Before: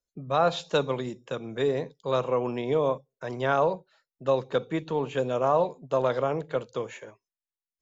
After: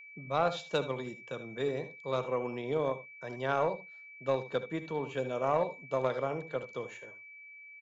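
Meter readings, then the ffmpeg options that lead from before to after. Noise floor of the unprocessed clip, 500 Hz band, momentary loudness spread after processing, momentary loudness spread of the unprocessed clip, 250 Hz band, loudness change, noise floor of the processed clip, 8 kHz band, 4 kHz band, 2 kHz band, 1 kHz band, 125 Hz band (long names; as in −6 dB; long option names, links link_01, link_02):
below −85 dBFS, −6.5 dB, 13 LU, 11 LU, −6.5 dB, −6.5 dB, −52 dBFS, can't be measured, −6.5 dB, −3.0 dB, −6.0 dB, −6.5 dB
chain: -af "aecho=1:1:67|77:0.141|0.211,aeval=exprs='0.299*(cos(1*acos(clip(val(0)/0.299,-1,1)))-cos(1*PI/2))+0.0299*(cos(3*acos(clip(val(0)/0.299,-1,1)))-cos(3*PI/2))':channel_layout=same,aeval=exprs='val(0)+0.00631*sin(2*PI*2300*n/s)':channel_layout=same,volume=-4.5dB"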